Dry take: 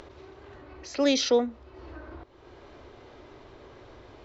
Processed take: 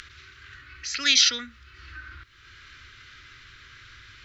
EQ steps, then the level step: FFT filter 110 Hz 0 dB, 790 Hz -29 dB, 1.4 kHz +11 dB; 0.0 dB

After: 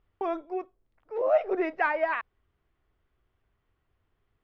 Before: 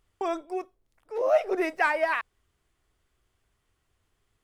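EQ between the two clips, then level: distance through air 240 m; treble shelf 4.8 kHz -8.5 dB; 0.0 dB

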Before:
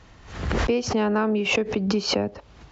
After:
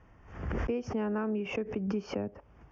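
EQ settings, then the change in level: dynamic bell 860 Hz, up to -4 dB, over -34 dBFS, Q 0.88; boxcar filter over 11 samples; -8.0 dB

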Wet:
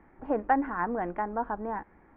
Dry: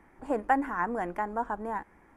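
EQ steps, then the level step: Gaussian low-pass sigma 2.4 samples; distance through air 270 m; band-stop 1 kHz, Q 22; +2.0 dB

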